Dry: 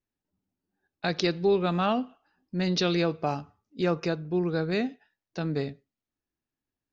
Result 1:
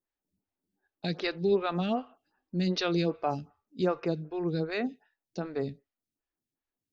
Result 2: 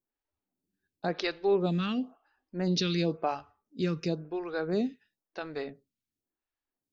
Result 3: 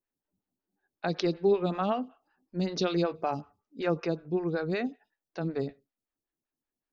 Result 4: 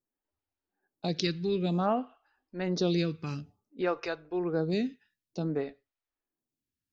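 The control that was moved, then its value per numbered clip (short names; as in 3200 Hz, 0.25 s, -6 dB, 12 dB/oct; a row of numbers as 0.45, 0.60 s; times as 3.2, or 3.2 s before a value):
photocell phaser, rate: 2.6, 0.96, 5.3, 0.55 Hz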